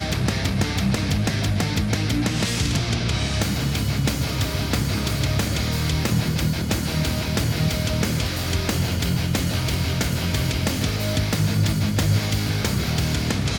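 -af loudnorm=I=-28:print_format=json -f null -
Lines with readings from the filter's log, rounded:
"input_i" : "-22.6",
"input_tp" : "-6.8",
"input_lra" : "0.8",
"input_thresh" : "-32.6",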